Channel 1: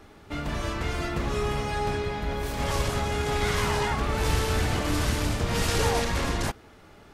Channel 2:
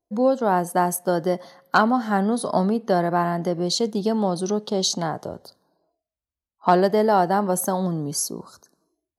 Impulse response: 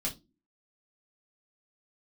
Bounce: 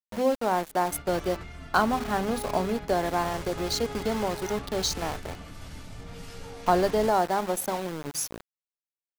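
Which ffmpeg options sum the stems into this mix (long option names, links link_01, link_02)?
-filter_complex "[0:a]alimiter=limit=-20.5dB:level=0:latency=1:release=10,adelay=600,volume=-12dB,asplit=2[link_01][link_02];[link_02]volume=-8dB[link_03];[1:a]adynamicequalizer=threshold=0.0112:dfrequency=180:dqfactor=3.3:tfrequency=180:tqfactor=3.3:attack=5:release=100:ratio=0.375:range=3:mode=cutabove:tftype=bell,bandreject=frequency=50:width_type=h:width=6,bandreject=frequency=100:width_type=h:width=6,bandreject=frequency=150:width_type=h:width=6,bandreject=frequency=200:width_type=h:width=6,bandreject=frequency=250:width_type=h:width=6,bandreject=frequency=300:width_type=h:width=6,aeval=exprs='val(0)*gte(abs(val(0)),0.0447)':channel_layout=same,volume=-5dB,asplit=2[link_04][link_05];[link_05]apad=whole_len=341019[link_06];[link_01][link_06]sidechaingate=range=-13dB:threshold=-37dB:ratio=16:detection=peak[link_07];[2:a]atrim=start_sample=2205[link_08];[link_03][link_08]afir=irnorm=-1:irlink=0[link_09];[link_07][link_04][link_09]amix=inputs=3:normalize=0"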